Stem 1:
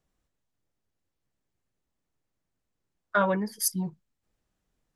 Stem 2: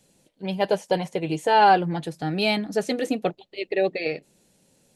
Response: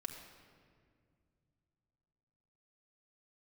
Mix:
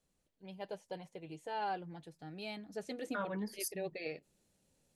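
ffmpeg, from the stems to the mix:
-filter_complex "[0:a]volume=-5.5dB[a];[1:a]equalizer=f=79:t=o:w=0.37:g=13,volume=-14dB,afade=t=in:st=2.53:d=0.8:silence=0.421697,asplit=2[b][c];[c]apad=whole_len=218580[d];[a][d]sidechaincompress=threshold=-41dB:ratio=8:attack=9.9:release=112[e];[e][b]amix=inputs=2:normalize=0,alimiter=level_in=4dB:limit=-24dB:level=0:latency=1:release=364,volume=-4dB"

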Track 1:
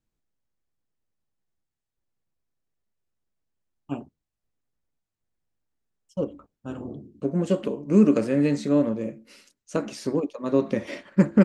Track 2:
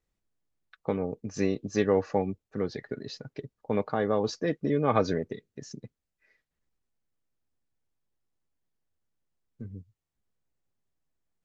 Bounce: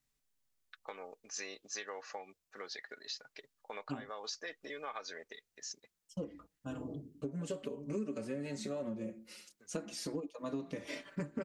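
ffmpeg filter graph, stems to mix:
-filter_complex "[0:a]asplit=2[a][b];[b]adelay=4.7,afreqshift=-0.26[c];[a][c]amix=inputs=2:normalize=1,volume=-2.5dB[d];[1:a]highpass=1k,acompressor=threshold=-40dB:ratio=3,volume=-1.5dB[e];[d][e]amix=inputs=2:normalize=0,highshelf=f=3.5k:g=7.5,acompressor=threshold=-37dB:ratio=5"

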